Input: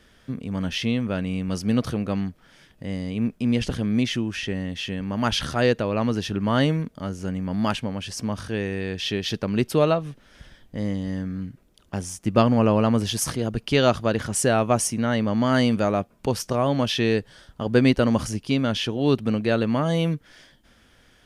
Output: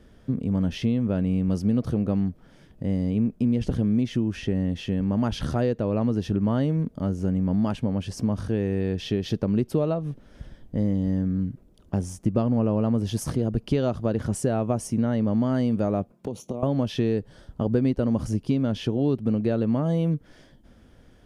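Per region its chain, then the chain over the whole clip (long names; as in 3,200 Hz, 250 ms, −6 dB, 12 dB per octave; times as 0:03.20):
0:16.12–0:16.63: high-pass filter 160 Hz + downward compressor 10 to 1, threshold −28 dBFS + flanger swept by the level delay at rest 6.5 ms, full sweep at −33.5 dBFS
whole clip: parametric band 1,800 Hz −4.5 dB 2.4 octaves; downward compressor 4 to 1, threshold −26 dBFS; tilt shelving filter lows +6.5 dB, about 1,200 Hz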